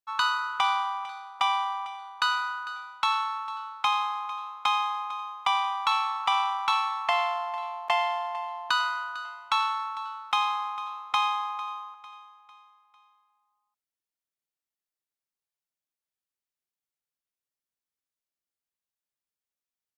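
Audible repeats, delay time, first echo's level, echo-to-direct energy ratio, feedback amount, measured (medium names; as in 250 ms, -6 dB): 3, 450 ms, -17.0 dB, -16.0 dB, 45%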